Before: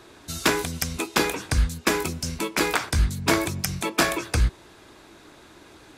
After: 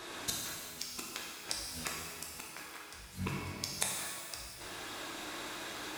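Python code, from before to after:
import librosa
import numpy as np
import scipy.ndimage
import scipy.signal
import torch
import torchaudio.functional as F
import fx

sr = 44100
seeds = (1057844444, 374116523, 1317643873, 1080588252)

y = fx.low_shelf(x, sr, hz=450.0, db=-11.5)
y = fx.gate_flip(y, sr, shuts_db=-25.0, range_db=-32)
y = fx.rev_shimmer(y, sr, seeds[0], rt60_s=1.8, semitones=12, shimmer_db=-8, drr_db=-2.0)
y = F.gain(torch.from_numpy(y), 5.0).numpy()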